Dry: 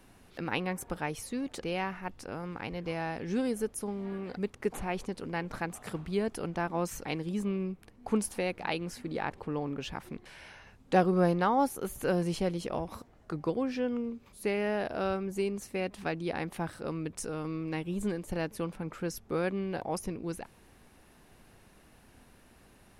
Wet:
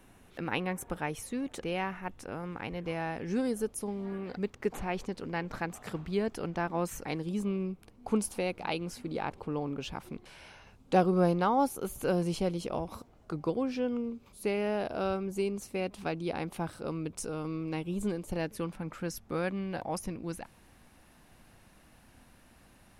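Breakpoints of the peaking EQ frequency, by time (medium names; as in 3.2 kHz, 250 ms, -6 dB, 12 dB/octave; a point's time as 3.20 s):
peaking EQ -7.5 dB 0.34 oct
3.15 s 4.7 kHz
3.94 s 1.2 kHz
4.30 s 10 kHz
6.69 s 10 kHz
7.27 s 1.8 kHz
18.32 s 1.8 kHz
18.77 s 410 Hz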